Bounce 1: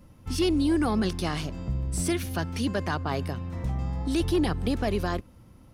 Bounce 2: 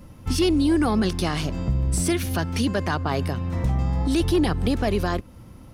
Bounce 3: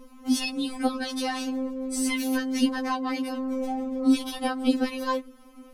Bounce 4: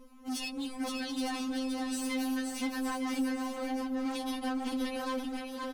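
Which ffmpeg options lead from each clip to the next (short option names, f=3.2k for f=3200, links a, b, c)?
-af "alimiter=limit=-22dB:level=0:latency=1:release=231,volume=8dB"
-af "afftfilt=real='re*3.46*eq(mod(b,12),0)':imag='im*3.46*eq(mod(b,12),0)':win_size=2048:overlap=0.75"
-af "asoftclip=type=hard:threshold=-26dB,aecho=1:1:520|910|1202|1422|1586:0.631|0.398|0.251|0.158|0.1,volume=-6.5dB"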